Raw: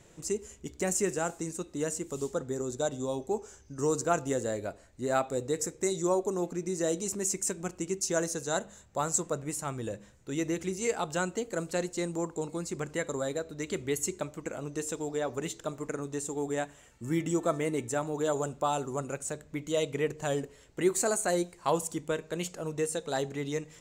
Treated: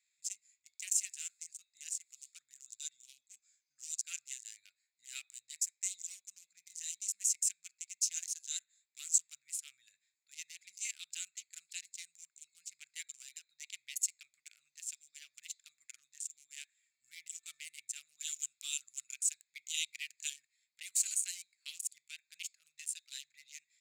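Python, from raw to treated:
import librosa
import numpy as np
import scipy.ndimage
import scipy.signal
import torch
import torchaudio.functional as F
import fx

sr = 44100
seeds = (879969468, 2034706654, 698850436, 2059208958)

y = fx.high_shelf(x, sr, hz=2100.0, db=6.0, at=(18.17, 20.3))
y = fx.wiener(y, sr, points=15)
y = scipy.signal.sosfilt(scipy.signal.ellip(4, 1.0, 60, 2400.0, 'highpass', fs=sr, output='sos'), y)
y = y * 10.0 ** (1.0 / 20.0)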